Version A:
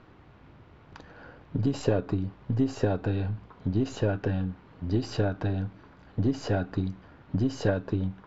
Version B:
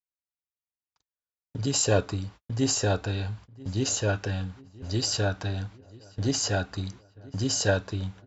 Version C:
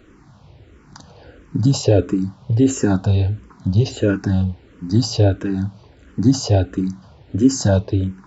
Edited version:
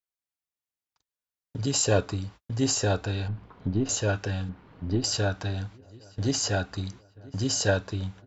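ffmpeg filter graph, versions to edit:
ffmpeg -i take0.wav -i take1.wav -filter_complex "[0:a]asplit=2[link_01][link_02];[1:a]asplit=3[link_03][link_04][link_05];[link_03]atrim=end=3.282[link_06];[link_01]atrim=start=3.278:end=3.892[link_07];[link_04]atrim=start=3.888:end=4.492[link_08];[link_02]atrim=start=4.488:end=5.042[link_09];[link_05]atrim=start=5.038[link_10];[link_06][link_07]acrossfade=duration=0.004:curve1=hsin:curve2=hsin[link_11];[link_11][link_08]acrossfade=duration=0.004:curve1=hsin:curve2=hsin[link_12];[link_12][link_09]acrossfade=duration=0.004:curve1=hsin:curve2=hsin[link_13];[link_13][link_10]acrossfade=duration=0.004:curve1=hsin:curve2=hsin" out.wav

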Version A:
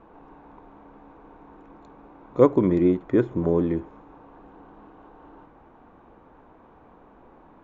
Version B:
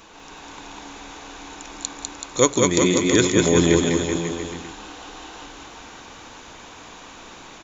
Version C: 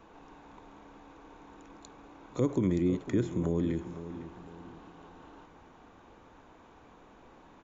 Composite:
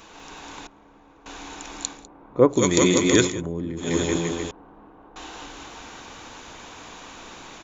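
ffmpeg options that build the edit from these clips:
ffmpeg -i take0.wav -i take1.wav -i take2.wav -filter_complex "[2:a]asplit=2[link_01][link_02];[0:a]asplit=2[link_03][link_04];[1:a]asplit=5[link_05][link_06][link_07][link_08][link_09];[link_05]atrim=end=0.672[link_10];[link_01]atrim=start=0.668:end=1.262[link_11];[link_06]atrim=start=1.258:end=2.08[link_12];[link_03]atrim=start=1.84:end=2.72[link_13];[link_07]atrim=start=2.48:end=3.42[link_14];[link_02]atrim=start=3.18:end=4[link_15];[link_08]atrim=start=3.76:end=4.512[link_16];[link_04]atrim=start=4.508:end=5.162[link_17];[link_09]atrim=start=5.158[link_18];[link_10][link_11]acrossfade=duration=0.004:curve1=hsin:curve2=hsin[link_19];[link_19][link_12]acrossfade=duration=0.004:curve1=hsin:curve2=hsin[link_20];[link_20][link_13]acrossfade=duration=0.24:curve1=tri:curve2=tri[link_21];[link_21][link_14]acrossfade=duration=0.24:curve1=tri:curve2=tri[link_22];[link_22][link_15]acrossfade=duration=0.24:curve1=tri:curve2=tri[link_23];[link_23][link_16]acrossfade=duration=0.24:curve1=tri:curve2=tri[link_24];[link_24][link_17]acrossfade=duration=0.004:curve1=hsin:curve2=hsin[link_25];[link_25][link_18]acrossfade=duration=0.004:curve1=hsin:curve2=hsin" out.wav

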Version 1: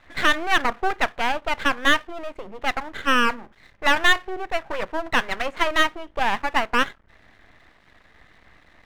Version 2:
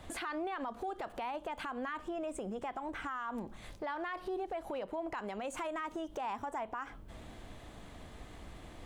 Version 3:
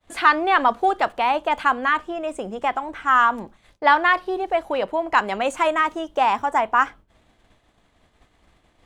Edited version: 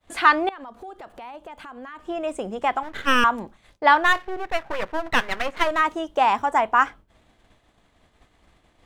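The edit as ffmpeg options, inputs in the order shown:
ffmpeg -i take0.wav -i take1.wav -i take2.wav -filter_complex "[0:a]asplit=2[link_01][link_02];[2:a]asplit=4[link_03][link_04][link_05][link_06];[link_03]atrim=end=0.492[link_07];[1:a]atrim=start=0.488:end=2.052[link_08];[link_04]atrim=start=2.048:end=2.832[link_09];[link_01]atrim=start=2.828:end=3.242[link_10];[link_05]atrim=start=3.238:end=4.22[link_11];[link_02]atrim=start=3.98:end=5.85[link_12];[link_06]atrim=start=5.61[link_13];[link_07][link_08]acrossfade=duration=0.004:curve1=hsin:curve2=hsin[link_14];[link_14][link_09]acrossfade=duration=0.004:curve1=hsin:curve2=hsin[link_15];[link_15][link_10]acrossfade=duration=0.004:curve1=hsin:curve2=hsin[link_16];[link_16][link_11]acrossfade=duration=0.004:curve1=hsin:curve2=hsin[link_17];[link_17][link_12]acrossfade=duration=0.24:curve1=tri:curve2=tri[link_18];[link_18][link_13]acrossfade=duration=0.24:curve1=tri:curve2=tri" out.wav

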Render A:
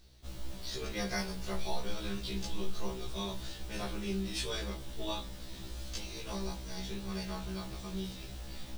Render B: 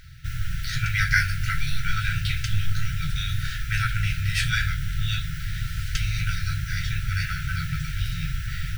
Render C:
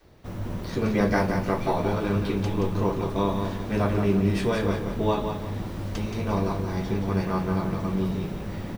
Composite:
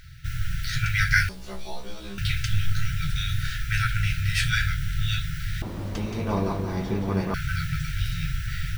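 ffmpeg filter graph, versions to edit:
ffmpeg -i take0.wav -i take1.wav -i take2.wav -filter_complex "[1:a]asplit=3[link_01][link_02][link_03];[link_01]atrim=end=1.292[link_04];[0:a]atrim=start=1.288:end=2.182[link_05];[link_02]atrim=start=2.178:end=5.622[link_06];[2:a]atrim=start=5.618:end=7.342[link_07];[link_03]atrim=start=7.338[link_08];[link_04][link_05]acrossfade=duration=0.004:curve1=hsin:curve2=hsin[link_09];[link_09][link_06]acrossfade=duration=0.004:curve1=hsin:curve2=hsin[link_10];[link_10][link_07]acrossfade=duration=0.004:curve1=hsin:curve2=hsin[link_11];[link_11][link_08]acrossfade=duration=0.004:curve1=hsin:curve2=hsin" out.wav

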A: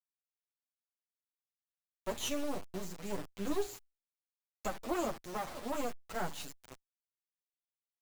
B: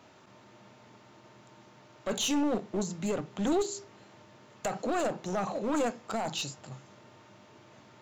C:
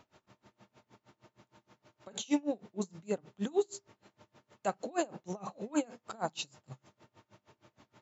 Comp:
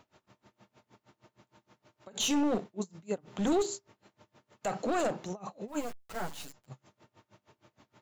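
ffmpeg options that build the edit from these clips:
ffmpeg -i take0.wav -i take1.wav -i take2.wav -filter_complex "[1:a]asplit=3[link_01][link_02][link_03];[2:a]asplit=5[link_04][link_05][link_06][link_07][link_08];[link_04]atrim=end=2.202[link_09];[link_01]atrim=start=2.198:end=2.642[link_10];[link_05]atrim=start=2.638:end=3.282[link_11];[link_02]atrim=start=3.278:end=3.752[link_12];[link_06]atrim=start=3.748:end=4.71[link_13];[link_03]atrim=start=4.61:end=5.33[link_14];[link_07]atrim=start=5.23:end=5.91[link_15];[0:a]atrim=start=5.67:end=6.7[link_16];[link_08]atrim=start=6.46[link_17];[link_09][link_10]acrossfade=duration=0.004:curve1=hsin:curve2=hsin[link_18];[link_18][link_11]acrossfade=duration=0.004:curve1=hsin:curve2=hsin[link_19];[link_19][link_12]acrossfade=duration=0.004:curve1=hsin:curve2=hsin[link_20];[link_20][link_13]acrossfade=duration=0.004:curve1=hsin:curve2=hsin[link_21];[link_21][link_14]acrossfade=duration=0.1:curve1=tri:curve2=tri[link_22];[link_22][link_15]acrossfade=duration=0.1:curve1=tri:curve2=tri[link_23];[link_23][link_16]acrossfade=duration=0.24:curve1=tri:curve2=tri[link_24];[link_24][link_17]acrossfade=duration=0.24:curve1=tri:curve2=tri" out.wav

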